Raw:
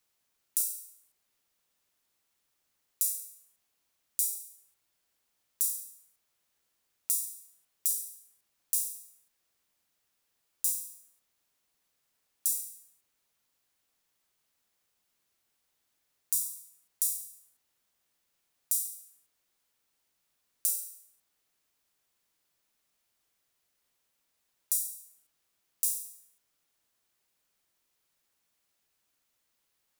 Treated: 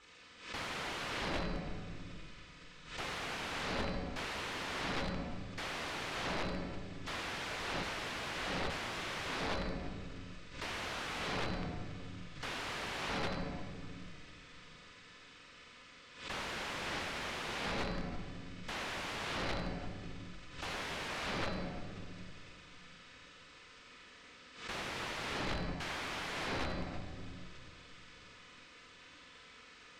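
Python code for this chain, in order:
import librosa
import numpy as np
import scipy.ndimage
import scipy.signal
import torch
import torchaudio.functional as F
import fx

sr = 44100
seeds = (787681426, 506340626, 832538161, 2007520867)

y = fx.partial_stretch(x, sr, pct=80)
y = fx.peak_eq(y, sr, hz=800.0, db=-12.0, octaves=0.28)
y = y + 0.52 * np.pad(y, (int(4.0 * sr / 1000.0), 0))[:len(y)]
y = fx.echo_wet_highpass(y, sr, ms=78, feedback_pct=48, hz=1900.0, wet_db=-10.0)
y = fx.over_compress(y, sr, threshold_db=-37.0, ratio=-0.5)
y = fx.cheby_harmonics(y, sr, harmonics=(5, 6, 7), levels_db=(-37, -11, -36), full_scale_db=-19.5)
y = fx.room_shoebox(y, sr, seeds[0], volume_m3=3200.0, walls='mixed', distance_m=4.1)
y = (np.mod(10.0 ** (43.5 / 20.0) * y + 1.0, 2.0) - 1.0) / 10.0 ** (43.5 / 20.0)
y = scipy.signal.sosfilt(scipy.signal.butter(2, 2700.0, 'lowpass', fs=sr, output='sos'), y)
y = fx.pre_swell(y, sr, db_per_s=100.0)
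y = y * librosa.db_to_amplitude(16.0)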